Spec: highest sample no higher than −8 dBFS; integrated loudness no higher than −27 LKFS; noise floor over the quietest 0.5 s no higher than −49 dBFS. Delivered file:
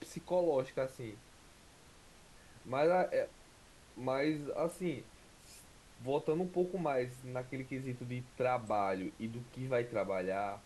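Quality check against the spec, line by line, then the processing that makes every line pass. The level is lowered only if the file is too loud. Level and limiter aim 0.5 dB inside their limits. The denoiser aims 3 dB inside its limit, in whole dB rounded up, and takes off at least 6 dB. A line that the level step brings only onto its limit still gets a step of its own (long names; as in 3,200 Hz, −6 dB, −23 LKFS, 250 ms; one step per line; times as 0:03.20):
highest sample −20.5 dBFS: in spec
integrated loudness −36.5 LKFS: in spec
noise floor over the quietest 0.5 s −60 dBFS: in spec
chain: no processing needed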